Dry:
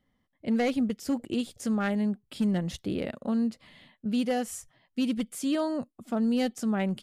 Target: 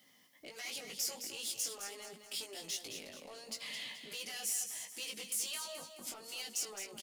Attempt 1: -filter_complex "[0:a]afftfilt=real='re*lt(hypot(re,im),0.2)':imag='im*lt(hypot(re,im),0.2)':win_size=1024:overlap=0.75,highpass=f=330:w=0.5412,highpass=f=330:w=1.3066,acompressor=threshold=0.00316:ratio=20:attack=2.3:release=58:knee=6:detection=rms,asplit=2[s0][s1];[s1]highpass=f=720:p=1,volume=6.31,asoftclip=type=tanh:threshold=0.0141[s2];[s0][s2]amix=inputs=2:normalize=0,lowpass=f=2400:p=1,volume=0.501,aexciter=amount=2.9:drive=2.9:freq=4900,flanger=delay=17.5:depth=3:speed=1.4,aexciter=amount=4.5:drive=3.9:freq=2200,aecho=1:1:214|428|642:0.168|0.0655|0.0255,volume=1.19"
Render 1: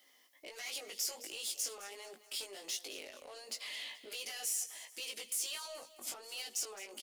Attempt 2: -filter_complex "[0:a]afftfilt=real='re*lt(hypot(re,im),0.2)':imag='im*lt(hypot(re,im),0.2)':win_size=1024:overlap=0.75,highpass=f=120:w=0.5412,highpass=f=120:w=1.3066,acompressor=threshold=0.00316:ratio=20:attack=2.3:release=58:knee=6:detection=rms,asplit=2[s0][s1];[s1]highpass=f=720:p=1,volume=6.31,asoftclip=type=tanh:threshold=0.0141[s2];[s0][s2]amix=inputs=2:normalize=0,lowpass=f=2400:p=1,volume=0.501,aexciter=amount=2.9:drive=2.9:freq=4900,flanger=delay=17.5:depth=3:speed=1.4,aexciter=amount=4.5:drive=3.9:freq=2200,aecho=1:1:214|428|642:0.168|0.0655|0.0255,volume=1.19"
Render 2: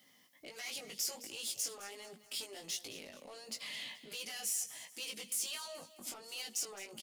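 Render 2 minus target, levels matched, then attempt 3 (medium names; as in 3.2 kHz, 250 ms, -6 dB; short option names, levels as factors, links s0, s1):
echo-to-direct -7 dB
-filter_complex "[0:a]afftfilt=real='re*lt(hypot(re,im),0.2)':imag='im*lt(hypot(re,im),0.2)':win_size=1024:overlap=0.75,highpass=f=120:w=0.5412,highpass=f=120:w=1.3066,acompressor=threshold=0.00316:ratio=20:attack=2.3:release=58:knee=6:detection=rms,asplit=2[s0][s1];[s1]highpass=f=720:p=1,volume=6.31,asoftclip=type=tanh:threshold=0.0141[s2];[s0][s2]amix=inputs=2:normalize=0,lowpass=f=2400:p=1,volume=0.501,aexciter=amount=2.9:drive=2.9:freq=4900,flanger=delay=17.5:depth=3:speed=1.4,aexciter=amount=4.5:drive=3.9:freq=2200,aecho=1:1:214|428|642|856:0.376|0.147|0.0572|0.0223,volume=1.19"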